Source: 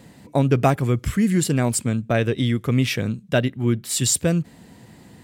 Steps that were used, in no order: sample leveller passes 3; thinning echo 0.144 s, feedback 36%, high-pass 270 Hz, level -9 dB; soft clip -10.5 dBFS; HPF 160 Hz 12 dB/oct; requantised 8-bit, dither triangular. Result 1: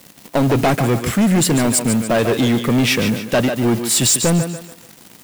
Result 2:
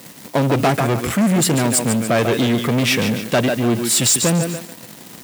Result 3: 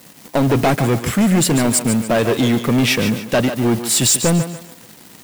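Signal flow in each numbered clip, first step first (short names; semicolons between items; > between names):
HPF > requantised > sample leveller > thinning echo > soft clip; thinning echo > requantised > sample leveller > soft clip > HPF; requantised > HPF > sample leveller > soft clip > thinning echo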